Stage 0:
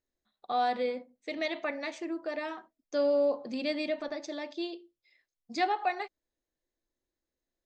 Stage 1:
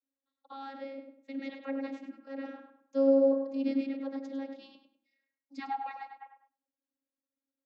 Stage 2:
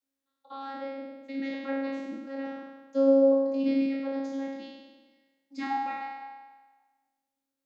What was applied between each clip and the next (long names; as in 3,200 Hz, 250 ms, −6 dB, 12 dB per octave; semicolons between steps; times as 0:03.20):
tape delay 101 ms, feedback 35%, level −5 dB, low-pass 2,700 Hz; gain on a spectral selection 0:06.21–0:06.48, 490–3,400 Hz +12 dB; channel vocoder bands 32, saw 272 Hz
peak hold with a decay on every bin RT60 1.29 s; level +2.5 dB